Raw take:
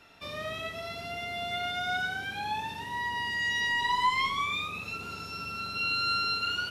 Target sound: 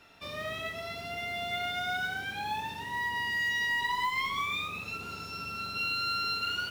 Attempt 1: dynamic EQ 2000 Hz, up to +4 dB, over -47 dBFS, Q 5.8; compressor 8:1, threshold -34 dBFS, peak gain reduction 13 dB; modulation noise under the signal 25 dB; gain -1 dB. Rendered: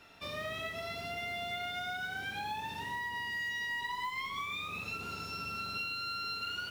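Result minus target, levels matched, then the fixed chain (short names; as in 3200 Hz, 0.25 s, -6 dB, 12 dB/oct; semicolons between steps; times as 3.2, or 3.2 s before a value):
compressor: peak gain reduction +7 dB
dynamic EQ 2000 Hz, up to +4 dB, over -47 dBFS, Q 5.8; compressor 8:1, threshold -26 dBFS, peak gain reduction 6 dB; modulation noise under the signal 25 dB; gain -1 dB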